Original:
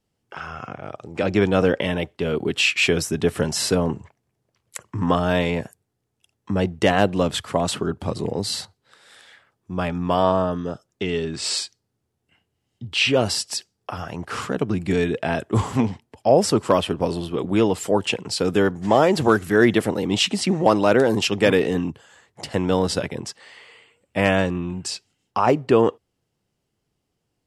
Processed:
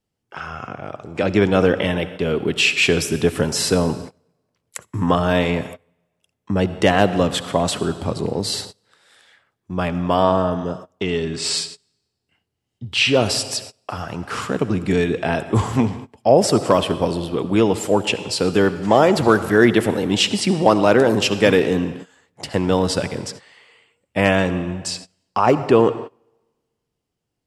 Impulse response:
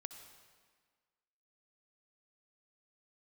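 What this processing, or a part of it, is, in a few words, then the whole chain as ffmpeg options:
keyed gated reverb: -filter_complex "[0:a]asplit=3[s0][s1][s2];[1:a]atrim=start_sample=2205[s3];[s1][s3]afir=irnorm=-1:irlink=0[s4];[s2]apad=whole_len=1211007[s5];[s4][s5]sidechaingate=range=0.0631:threshold=0.01:ratio=16:detection=peak,volume=2.11[s6];[s0][s6]amix=inputs=2:normalize=0,volume=0.596"

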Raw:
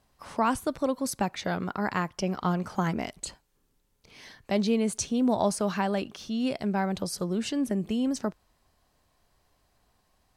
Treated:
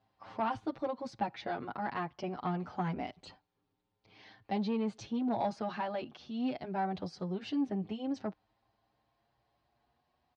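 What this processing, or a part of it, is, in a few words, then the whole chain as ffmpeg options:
barber-pole flanger into a guitar amplifier: -filter_complex "[0:a]asplit=2[s0][s1];[s1]adelay=7.3,afreqshift=0.25[s2];[s0][s2]amix=inputs=2:normalize=1,asoftclip=type=tanh:threshold=0.0794,highpass=77,equalizer=f=110:t=q:w=4:g=5,equalizer=f=300:t=q:w=4:g=4,equalizer=f=780:t=q:w=4:g=8,lowpass=f=4400:w=0.5412,lowpass=f=4400:w=1.3066,volume=0.562"

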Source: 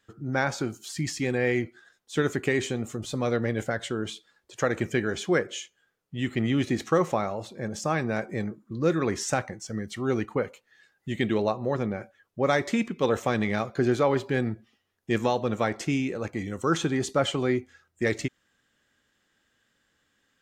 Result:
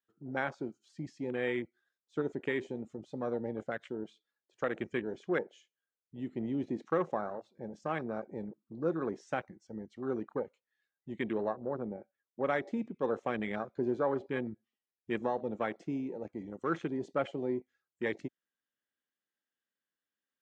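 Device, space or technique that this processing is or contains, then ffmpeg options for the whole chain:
over-cleaned archive recording: -filter_complex "[0:a]highpass=190,lowpass=5800,afwtdn=0.0282,asettb=1/sr,asplit=3[s0][s1][s2];[s0]atrim=end=11.554[s3];[s1]atrim=start=11.55:end=12.42,asetpts=PTS-STARTPTS,afade=t=in:d=0.004:c=qsin,afade=t=out:st=0.866:d=0.004:c=qsin,lowpass=f=1700:p=1[s4];[s2]atrim=start=12.416[s5];[s3][s4]acrossfade=d=0.004:c1=hsin:c2=qsin[s6];[s6][s5]acrossfade=d=0.004:c1=qsin:c2=hsin,volume=0.422"

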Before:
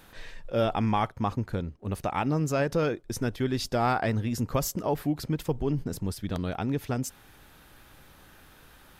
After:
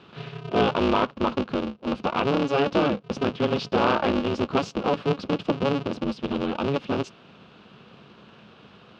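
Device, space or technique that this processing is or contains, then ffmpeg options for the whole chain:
ring modulator pedal into a guitar cabinet: -af "aeval=exprs='val(0)*sgn(sin(2*PI*140*n/s))':c=same,highpass=98,equalizer=f=210:t=q:w=4:g=9,equalizer=f=350:t=q:w=4:g=3,equalizer=f=500:t=q:w=4:g=5,equalizer=f=1200:t=q:w=4:g=4,equalizer=f=1900:t=q:w=4:g=-8,equalizer=f=2800:t=q:w=4:g=7,lowpass=f=4500:w=0.5412,lowpass=f=4500:w=1.3066,volume=1.26"

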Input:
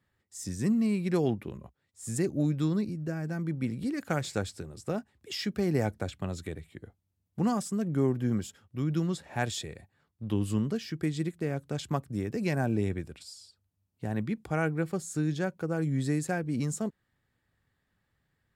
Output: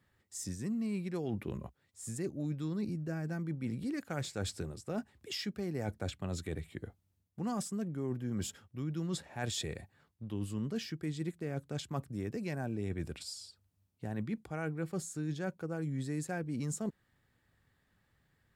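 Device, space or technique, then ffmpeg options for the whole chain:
compression on the reversed sound: -af "areverse,acompressor=threshold=0.0141:ratio=6,areverse,volume=1.41"

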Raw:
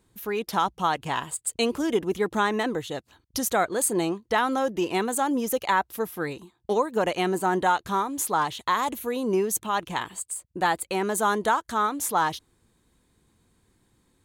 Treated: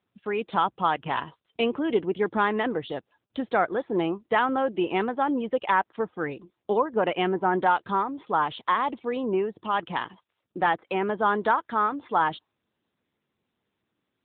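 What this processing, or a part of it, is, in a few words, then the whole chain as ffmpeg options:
mobile call with aggressive noise cancelling: -af "highpass=f=130:p=1,afftdn=nr=17:nf=-47,volume=1.12" -ar 8000 -c:a libopencore_amrnb -b:a 10200

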